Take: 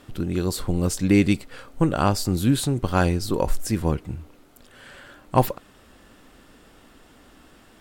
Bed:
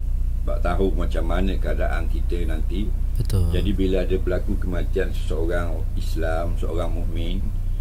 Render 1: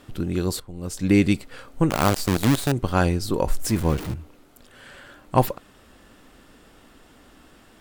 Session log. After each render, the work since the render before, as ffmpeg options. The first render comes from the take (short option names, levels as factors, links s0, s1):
-filter_complex "[0:a]asettb=1/sr,asplit=3[s0][s1][s2];[s0]atrim=end=1.904[s3];[s1]atrim=start=1.9:end=2.72,asetpts=PTS-STARTPTS,afade=t=in:d=0.004:c=qsin,afade=t=out:st=0.816:d=0.004:c=qsin,acrusher=bits=4:dc=4:mix=0:aa=0.000001[s4];[s2]atrim=start=2.716[s5];[s3][s4]acrossfade=d=0.004:c1=hsin:c2=qsin[s6];[s6][s5]acrossfade=d=0.004:c1=qsin:c2=hsin,asettb=1/sr,asplit=3[s7][s8][s9];[s7]atrim=end=3.624[s10];[s8]atrim=start=3.62:end=4.14,asetpts=PTS-STARTPTS,afade=t=in:d=0.004:c=qsin,afade=t=out:st=0.516:d=0.004:c=qsin,aeval=exprs='val(0)+0.5*0.0355*sgn(val(0))':c=same[s11];[s9]atrim=start=4.136[s12];[s10][s11]acrossfade=d=0.004:c1=hsin:c2=qsin[s13];[s13][s12]acrossfade=d=0.004:c1=qsin:c2=hsin,asplit=2[s14][s15];[s14]atrim=end=0.6,asetpts=PTS-STARTPTS,afade=t=out:st=0.596:d=0.004:c=hsin:silence=0.141254[s16];[s15]atrim=start=0.6,asetpts=PTS-STARTPTS,afade=t=in:d=0.5:c=qua:silence=0.141254[s17];[s16][s17]concat=n=2:v=0:a=1"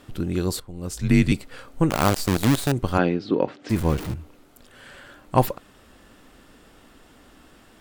-filter_complex "[0:a]asettb=1/sr,asplit=3[s0][s1][s2];[s0]atrim=end=0.914[s3];[s1]atrim=start=0.91:end=1.32,asetpts=PTS-STARTPTS,afade=t=in:d=0.004:c=qsin,afade=t=out:st=0.406:d=0.004:c=qsin,afreqshift=-67[s4];[s2]atrim=start=1.316[s5];[s3][s4]acrossfade=d=0.004:c1=hsin:c2=qsin[s6];[s6][s5]acrossfade=d=0.004:c1=qsin:c2=hsin,asplit=3[s7][s8][s9];[s7]afade=t=out:st=2.97:d=0.02[s10];[s8]highpass=f=150:w=0.5412,highpass=f=150:w=1.3066,equalizer=f=290:t=q:w=4:g=6,equalizer=f=440:t=q:w=4:g=3,equalizer=f=990:t=q:w=4:g=-4,lowpass=f=3700:w=0.5412,lowpass=f=3700:w=1.3066,afade=t=in:st=2.97:d=0.02,afade=t=out:st=3.69:d=0.02[s11];[s9]afade=t=in:st=3.69:d=0.02[s12];[s10][s11][s12]amix=inputs=3:normalize=0"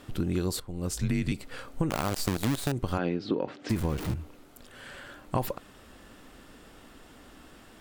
-af "alimiter=limit=0.282:level=0:latency=1:release=66,acompressor=threshold=0.0631:ratio=6"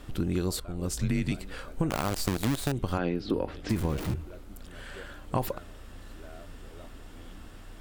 -filter_complex "[1:a]volume=0.0668[s0];[0:a][s0]amix=inputs=2:normalize=0"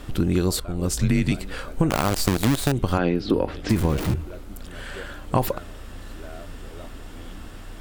-af "volume=2.37"